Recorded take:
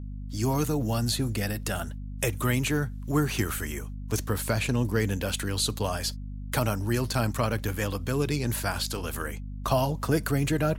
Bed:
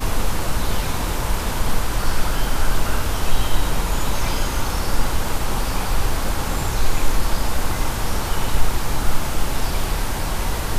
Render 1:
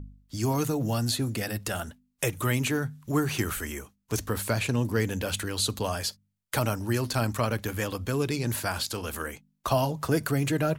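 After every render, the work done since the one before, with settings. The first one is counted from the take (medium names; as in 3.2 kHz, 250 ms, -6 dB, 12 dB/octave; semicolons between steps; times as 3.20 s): de-hum 50 Hz, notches 5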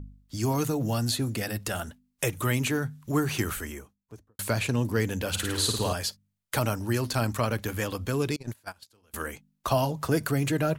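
3.44–4.39 s: studio fade out; 5.29–5.93 s: flutter echo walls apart 9.2 m, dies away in 0.78 s; 8.36–9.14 s: gate -27 dBFS, range -30 dB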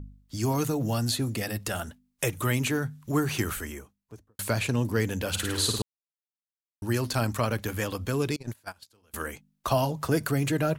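1.24–1.64 s: band-stop 1.5 kHz; 5.82–6.82 s: mute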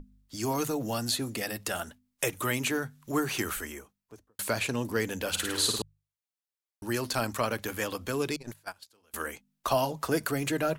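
peaking EQ 100 Hz -10 dB 2.1 oct; hum notches 50/100/150 Hz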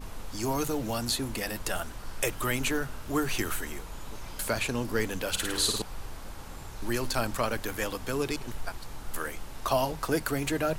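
add bed -20 dB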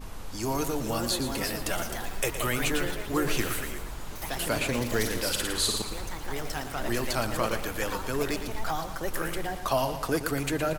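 ever faster or slower copies 525 ms, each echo +3 st, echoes 3, each echo -6 dB; feedback delay 116 ms, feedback 44%, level -10 dB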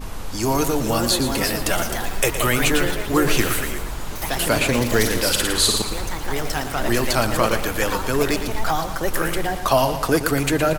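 trim +9 dB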